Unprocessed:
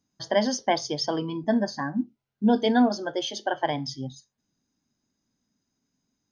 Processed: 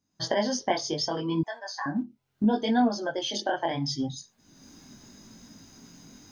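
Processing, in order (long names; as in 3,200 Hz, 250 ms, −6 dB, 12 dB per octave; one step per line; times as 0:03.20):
camcorder AGC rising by 38 dB per second
multi-voice chorus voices 2, 0.71 Hz, delay 21 ms, depth 3.7 ms
0:01.43–0:01.86: high-pass filter 800 Hz 24 dB per octave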